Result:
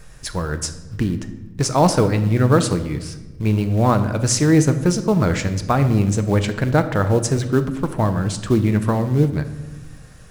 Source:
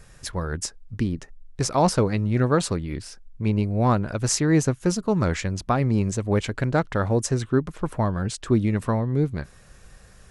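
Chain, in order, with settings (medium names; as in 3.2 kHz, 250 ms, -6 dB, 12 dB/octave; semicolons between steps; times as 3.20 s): in parallel at -5 dB: short-mantissa float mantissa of 2-bit; on the sum: simulated room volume 690 m³, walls mixed, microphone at 0.55 m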